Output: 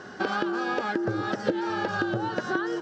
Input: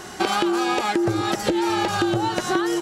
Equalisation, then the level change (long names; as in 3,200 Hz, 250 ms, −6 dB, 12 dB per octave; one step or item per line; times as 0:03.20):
loudspeaker in its box 140–5,000 Hz, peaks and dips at 160 Hz −4 dB, 350 Hz −8 dB, 1,900 Hz −5 dB, 3,900 Hz −4 dB
flat-topped bell 970 Hz −9 dB 1.3 octaves
high shelf with overshoot 1,900 Hz −6.5 dB, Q 3
0.0 dB